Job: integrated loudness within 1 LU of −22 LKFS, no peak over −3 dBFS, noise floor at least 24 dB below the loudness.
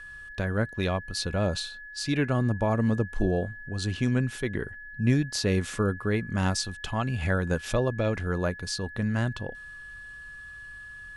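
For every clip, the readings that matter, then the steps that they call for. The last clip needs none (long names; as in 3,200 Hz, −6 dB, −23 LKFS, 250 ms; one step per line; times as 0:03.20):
interfering tone 1,700 Hz; level of the tone −41 dBFS; integrated loudness −28.5 LKFS; sample peak −11.0 dBFS; target loudness −22.0 LKFS
→ notch filter 1,700 Hz, Q 30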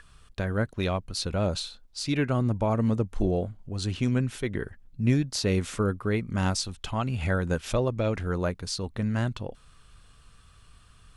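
interfering tone none found; integrated loudness −28.5 LKFS; sample peak −11.0 dBFS; target loudness −22.0 LKFS
→ level +6.5 dB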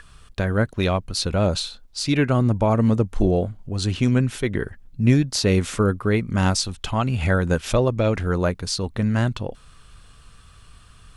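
integrated loudness −22.0 LKFS; sample peak −4.5 dBFS; background noise floor −50 dBFS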